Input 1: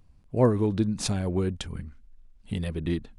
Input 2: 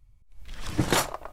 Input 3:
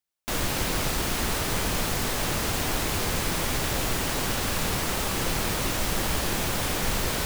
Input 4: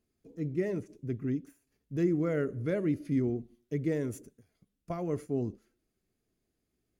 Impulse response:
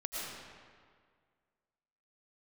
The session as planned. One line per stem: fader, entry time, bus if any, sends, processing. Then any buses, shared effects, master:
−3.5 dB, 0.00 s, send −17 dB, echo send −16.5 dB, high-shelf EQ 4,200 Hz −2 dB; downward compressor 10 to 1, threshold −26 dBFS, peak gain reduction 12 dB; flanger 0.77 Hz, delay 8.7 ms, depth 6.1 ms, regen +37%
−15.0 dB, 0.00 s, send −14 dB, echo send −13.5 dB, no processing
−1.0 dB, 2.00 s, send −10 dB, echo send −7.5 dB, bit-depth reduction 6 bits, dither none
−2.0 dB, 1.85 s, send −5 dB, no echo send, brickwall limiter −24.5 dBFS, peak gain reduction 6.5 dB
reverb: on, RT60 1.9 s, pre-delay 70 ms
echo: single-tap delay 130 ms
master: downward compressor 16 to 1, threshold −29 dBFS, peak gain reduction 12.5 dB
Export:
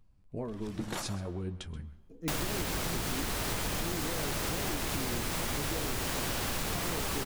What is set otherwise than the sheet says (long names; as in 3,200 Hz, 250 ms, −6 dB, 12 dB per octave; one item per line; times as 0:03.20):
stem 2: send −14 dB → −5 dB
reverb return −9.5 dB